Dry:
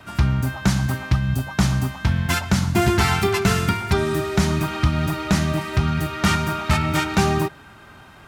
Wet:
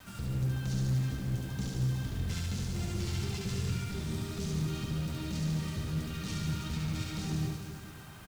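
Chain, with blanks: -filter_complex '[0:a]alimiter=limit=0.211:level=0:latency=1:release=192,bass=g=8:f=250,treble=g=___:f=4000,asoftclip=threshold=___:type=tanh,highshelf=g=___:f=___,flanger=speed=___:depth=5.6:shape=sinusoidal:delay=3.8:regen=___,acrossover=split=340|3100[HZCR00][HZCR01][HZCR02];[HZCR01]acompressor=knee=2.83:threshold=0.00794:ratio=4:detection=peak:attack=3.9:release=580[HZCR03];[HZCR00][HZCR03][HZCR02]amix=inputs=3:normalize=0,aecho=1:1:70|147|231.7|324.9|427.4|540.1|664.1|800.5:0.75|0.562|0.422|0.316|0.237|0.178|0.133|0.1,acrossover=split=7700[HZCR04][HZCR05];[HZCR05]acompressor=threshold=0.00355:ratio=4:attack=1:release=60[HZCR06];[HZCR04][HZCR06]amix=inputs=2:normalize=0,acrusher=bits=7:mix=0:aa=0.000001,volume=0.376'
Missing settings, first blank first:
1, 0.0891, 8.5, 3400, 1.8, -34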